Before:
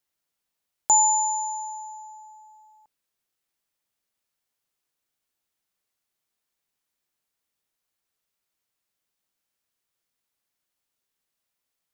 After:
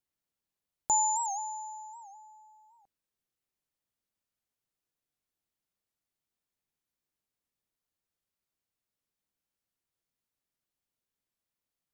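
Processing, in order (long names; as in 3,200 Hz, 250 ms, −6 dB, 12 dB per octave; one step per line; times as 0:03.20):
low-shelf EQ 440 Hz +9 dB
wow of a warped record 78 rpm, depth 160 cents
level −9 dB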